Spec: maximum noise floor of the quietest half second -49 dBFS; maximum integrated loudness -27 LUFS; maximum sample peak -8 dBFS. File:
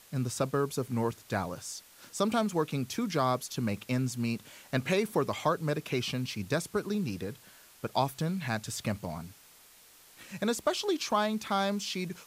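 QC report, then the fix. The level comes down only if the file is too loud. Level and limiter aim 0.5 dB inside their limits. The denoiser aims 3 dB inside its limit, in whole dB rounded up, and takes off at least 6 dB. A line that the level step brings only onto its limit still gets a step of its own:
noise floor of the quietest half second -57 dBFS: OK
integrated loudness -32.0 LUFS: OK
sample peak -14.5 dBFS: OK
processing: none

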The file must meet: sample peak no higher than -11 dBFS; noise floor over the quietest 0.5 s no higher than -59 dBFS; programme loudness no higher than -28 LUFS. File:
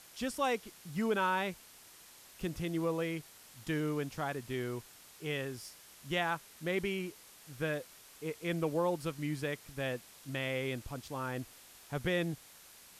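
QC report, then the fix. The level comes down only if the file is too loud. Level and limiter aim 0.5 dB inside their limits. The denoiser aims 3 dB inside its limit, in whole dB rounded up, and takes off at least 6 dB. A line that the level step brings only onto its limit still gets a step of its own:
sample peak -19.5 dBFS: OK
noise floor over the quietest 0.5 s -57 dBFS: fail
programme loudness -36.5 LUFS: OK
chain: denoiser 6 dB, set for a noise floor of -57 dBFS

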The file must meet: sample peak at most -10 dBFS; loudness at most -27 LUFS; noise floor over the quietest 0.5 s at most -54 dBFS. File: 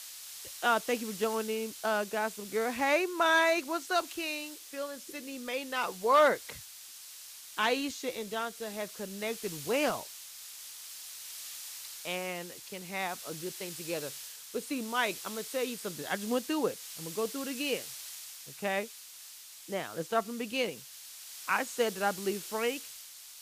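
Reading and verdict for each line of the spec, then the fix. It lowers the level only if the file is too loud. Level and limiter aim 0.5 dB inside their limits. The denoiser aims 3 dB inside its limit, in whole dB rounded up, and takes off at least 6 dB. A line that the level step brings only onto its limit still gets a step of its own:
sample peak -14.0 dBFS: OK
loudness -33.0 LUFS: OK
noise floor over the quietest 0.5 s -50 dBFS: fail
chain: denoiser 7 dB, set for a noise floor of -50 dBFS

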